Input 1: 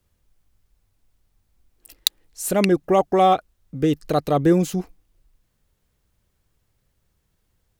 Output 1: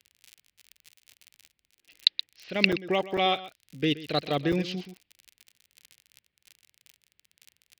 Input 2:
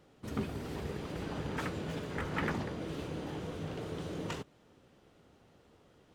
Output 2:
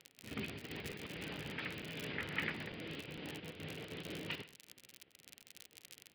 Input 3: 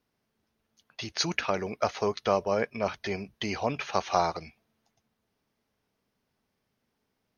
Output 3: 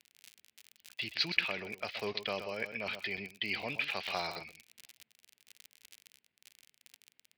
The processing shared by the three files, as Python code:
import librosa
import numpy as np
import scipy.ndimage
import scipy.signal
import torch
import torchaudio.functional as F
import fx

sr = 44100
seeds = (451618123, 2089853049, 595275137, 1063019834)

p1 = x + 10.0 ** (-12.5 / 20.0) * np.pad(x, (int(125 * sr / 1000.0), 0))[:len(x)]
p2 = np.repeat(scipy.signal.resample_poly(p1, 1, 3), 3)[:len(p1)]
p3 = scipy.signal.sosfilt(scipy.signal.cheby1(4, 1.0, 4900.0, 'lowpass', fs=sr, output='sos'), p2)
p4 = fx.env_lowpass(p3, sr, base_hz=2400.0, full_db=-16.5)
p5 = fx.dmg_crackle(p4, sr, seeds[0], per_s=51.0, level_db=-39.0)
p6 = scipy.signal.sosfilt(scipy.signal.butter(2, 92.0, 'highpass', fs=sr, output='sos'), p5)
p7 = fx.level_steps(p6, sr, step_db=21)
p8 = p6 + (p7 * 10.0 ** (2.0 / 20.0))
p9 = fx.high_shelf_res(p8, sr, hz=1700.0, db=12.0, q=1.5)
p10 = fx.buffer_crackle(p9, sr, first_s=0.92, period_s=0.45, block=256, kind='zero')
p11 = fx.am_noise(p10, sr, seeds[1], hz=5.7, depth_pct=50)
y = p11 * 10.0 ** (-9.5 / 20.0)